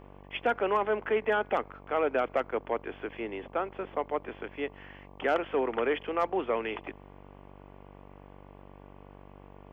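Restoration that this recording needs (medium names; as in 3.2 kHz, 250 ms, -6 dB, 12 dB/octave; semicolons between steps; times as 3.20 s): de-hum 48.3 Hz, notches 24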